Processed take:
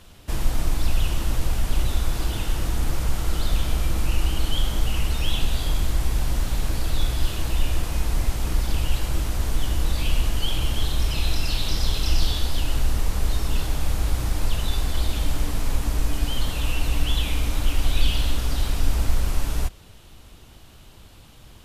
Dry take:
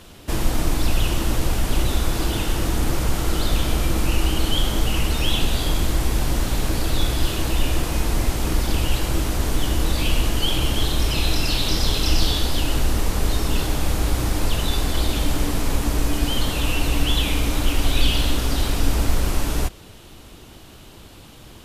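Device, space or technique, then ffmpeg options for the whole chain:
low shelf boost with a cut just above: -af "lowshelf=f=80:g=6,equalizer=f=330:t=o:w=1.2:g=-4.5,volume=0.531"

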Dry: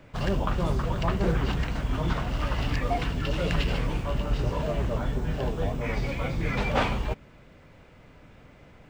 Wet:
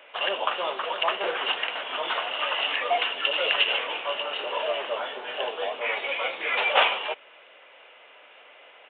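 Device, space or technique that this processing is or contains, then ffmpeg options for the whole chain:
musical greeting card: -af "aresample=8000,aresample=44100,highpass=f=520:w=0.5412,highpass=f=520:w=1.3066,equalizer=f=2900:t=o:w=0.5:g=10,volume=1.78"

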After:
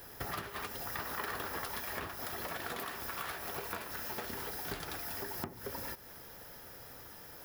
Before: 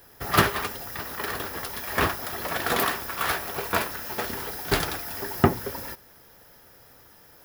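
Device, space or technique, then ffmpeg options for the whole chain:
serial compression, leveller first: -filter_complex "[0:a]acompressor=threshold=0.0398:ratio=3,acompressor=threshold=0.01:ratio=6,asettb=1/sr,asplit=3[s0][s1][s2];[s0]atrim=end=0.854[s3];[s1]atrim=start=0.85:end=1.81,asetpts=PTS-STARTPTS,afade=t=in:d=0.004:c=qsin,afade=t=out:st=0.956:d=0.004:c=qsin,equalizer=f=1100:t=o:w=1.6:g=4[s4];[s2]atrim=start=1.806[s5];[s3][s4]acrossfade=d=0.004:c1=hsin:c2=qsin[s6];[s6][s5]acrossfade=d=0.004:c1=qsin:c2=hsin,volume=1.26"

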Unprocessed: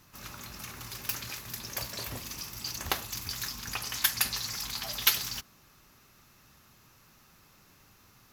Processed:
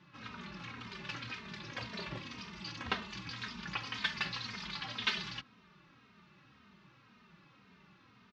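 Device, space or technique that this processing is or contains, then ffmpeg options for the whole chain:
barber-pole flanger into a guitar amplifier: -filter_complex "[0:a]asplit=2[s0][s1];[s1]adelay=3,afreqshift=-1.9[s2];[s0][s2]amix=inputs=2:normalize=1,asoftclip=type=tanh:threshold=0.0891,highpass=94,equalizer=f=96:t=q:w=4:g=-8,equalizer=f=190:t=q:w=4:g=7,equalizer=f=510:t=q:w=4:g=-3,equalizer=f=730:t=q:w=4:g=-6,lowpass=f=3700:w=0.5412,lowpass=f=3700:w=1.3066,volume=1.41"

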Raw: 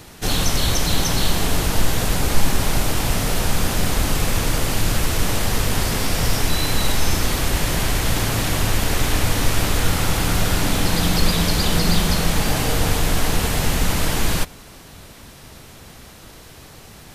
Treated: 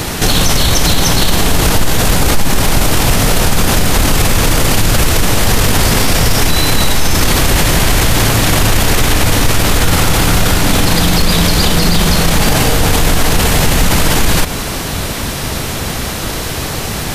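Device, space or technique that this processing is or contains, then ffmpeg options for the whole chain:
loud club master: -af "acompressor=threshold=0.126:ratio=3,asoftclip=type=hard:threshold=0.251,alimiter=level_in=15.8:limit=0.891:release=50:level=0:latency=1,volume=0.891"

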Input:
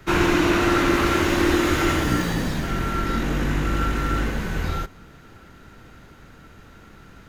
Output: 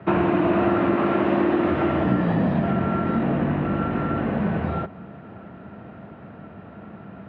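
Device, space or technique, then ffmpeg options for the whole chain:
bass amplifier: -filter_complex "[0:a]asettb=1/sr,asplit=3[s0][s1][s2];[s0]atrim=end=0.934[s3];[s1]atrim=start=0.93:end=1.59,asetpts=PTS-STARTPTS,afade=t=in:d=0.004:c=qsin,afade=t=out:st=0.656:d=0.004:c=qsin,highpass=130[s4];[s2]atrim=start=1.586[s5];[s3][s4]acrossfade=d=0.004:c1=hsin:c2=qsin[s6];[s6][s5]acrossfade=d=0.004:c1=qsin:c2=hsin,acompressor=threshold=0.0631:ratio=4,highpass=f=89:w=0.5412,highpass=f=89:w=1.3066,equalizer=f=200:t=q:w=4:g=8,equalizer=f=660:t=q:w=4:g=10,equalizer=f=1500:t=q:w=4:g=-6,equalizer=f=2100:t=q:w=4:g=-7,lowpass=f=2300:w=0.5412,lowpass=f=2300:w=1.3066,volume=1.88"

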